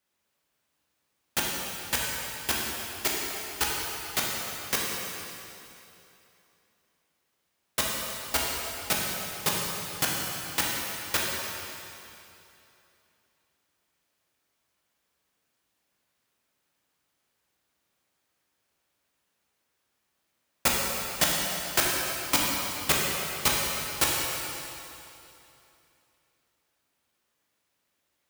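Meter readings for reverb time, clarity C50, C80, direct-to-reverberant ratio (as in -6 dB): 2.9 s, -1.0 dB, 0.5 dB, -3.5 dB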